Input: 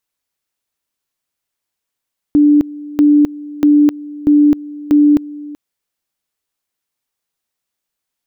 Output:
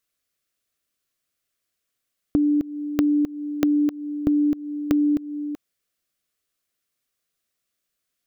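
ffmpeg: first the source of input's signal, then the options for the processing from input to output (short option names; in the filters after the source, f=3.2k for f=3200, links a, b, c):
-f lavfi -i "aevalsrc='pow(10,(-5.5-20*gte(mod(t,0.64),0.26))/20)*sin(2*PI*294*t)':d=3.2:s=44100"
-af "acompressor=threshold=-19dB:ratio=6,asuperstop=centerf=890:order=4:qfactor=3"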